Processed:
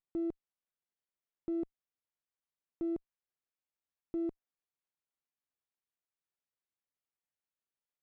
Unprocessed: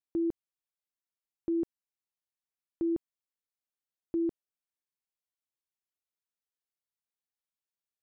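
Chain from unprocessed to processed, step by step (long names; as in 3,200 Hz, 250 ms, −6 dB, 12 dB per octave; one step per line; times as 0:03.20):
windowed peak hold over 9 samples
level −5 dB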